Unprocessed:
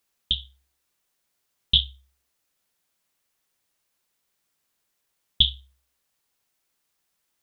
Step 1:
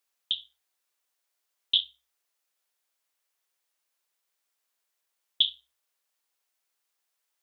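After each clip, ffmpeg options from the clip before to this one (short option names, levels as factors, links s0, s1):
-af "highpass=460,volume=0.596"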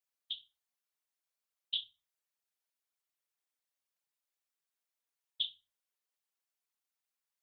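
-af "afftfilt=real='hypot(re,im)*cos(2*PI*random(0))':imag='hypot(re,im)*sin(2*PI*random(1))':win_size=512:overlap=0.75,volume=0.562"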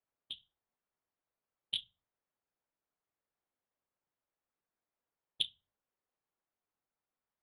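-af "adynamicsmooth=sensitivity=1.5:basefreq=1300,volume=2.82"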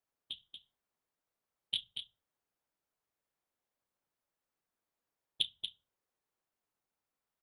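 -af "aecho=1:1:234:0.422,volume=1.12"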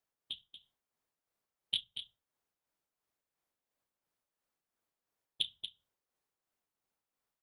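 -af "tremolo=f=2.9:d=0.44,volume=1.19"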